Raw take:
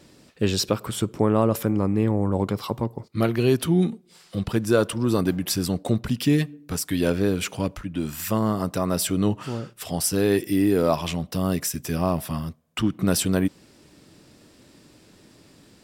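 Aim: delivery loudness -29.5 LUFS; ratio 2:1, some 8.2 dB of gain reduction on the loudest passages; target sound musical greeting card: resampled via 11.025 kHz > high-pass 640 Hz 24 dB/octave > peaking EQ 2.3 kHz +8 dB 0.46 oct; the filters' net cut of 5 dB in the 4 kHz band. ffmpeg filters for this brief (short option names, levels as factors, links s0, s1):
-af "equalizer=f=4000:t=o:g=-8.5,acompressor=threshold=0.0316:ratio=2,aresample=11025,aresample=44100,highpass=f=640:w=0.5412,highpass=f=640:w=1.3066,equalizer=f=2300:t=o:w=0.46:g=8,volume=3.35"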